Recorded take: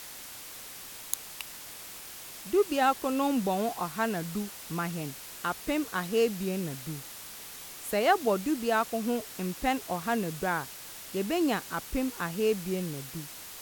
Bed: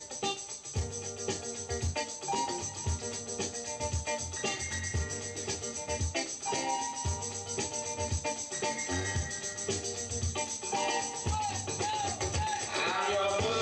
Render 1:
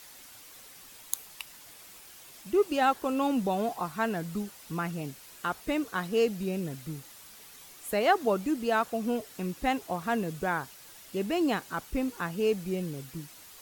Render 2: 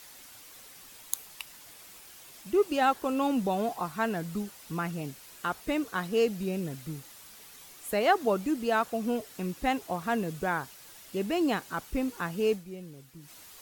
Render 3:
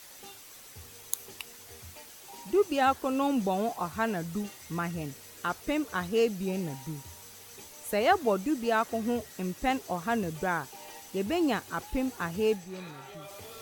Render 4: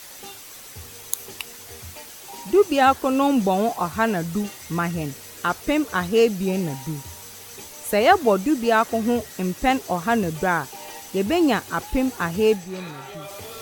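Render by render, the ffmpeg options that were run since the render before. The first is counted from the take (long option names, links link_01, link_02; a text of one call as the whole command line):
ffmpeg -i in.wav -af "afftdn=noise_reduction=8:noise_floor=-45" out.wav
ffmpeg -i in.wav -filter_complex "[0:a]asplit=3[link_01][link_02][link_03];[link_01]atrim=end=12.66,asetpts=PTS-STARTPTS,afade=type=out:start_time=12.53:duration=0.13:curve=qua:silence=0.316228[link_04];[link_02]atrim=start=12.66:end=13.18,asetpts=PTS-STARTPTS,volume=-10dB[link_05];[link_03]atrim=start=13.18,asetpts=PTS-STARTPTS,afade=type=in:duration=0.13:curve=qua:silence=0.316228[link_06];[link_04][link_05][link_06]concat=n=3:v=0:a=1" out.wav
ffmpeg -i in.wav -i bed.wav -filter_complex "[1:a]volume=-17dB[link_01];[0:a][link_01]amix=inputs=2:normalize=0" out.wav
ffmpeg -i in.wav -af "volume=8.5dB,alimiter=limit=-3dB:level=0:latency=1" out.wav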